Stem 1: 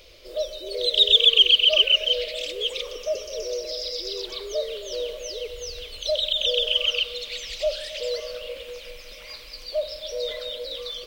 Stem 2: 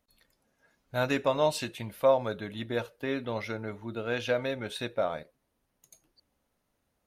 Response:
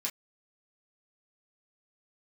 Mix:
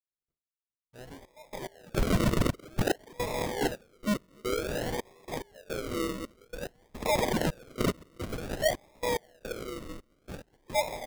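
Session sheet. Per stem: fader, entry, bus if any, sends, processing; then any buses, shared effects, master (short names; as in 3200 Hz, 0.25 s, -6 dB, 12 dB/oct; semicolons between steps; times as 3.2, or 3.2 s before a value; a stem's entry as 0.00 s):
+3.0 dB, 1.00 s, no send, limiter -16 dBFS, peak gain reduction 10.5 dB
-12.5 dB, 0.00 s, no send, gate with hold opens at -50 dBFS; bell 500 Hz -5 dB 2.2 oct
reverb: off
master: flange 1.9 Hz, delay 7.1 ms, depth 9.1 ms, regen +82%; step gate "..x..xxxx" 108 bpm -24 dB; decimation with a swept rate 42×, swing 60% 0.53 Hz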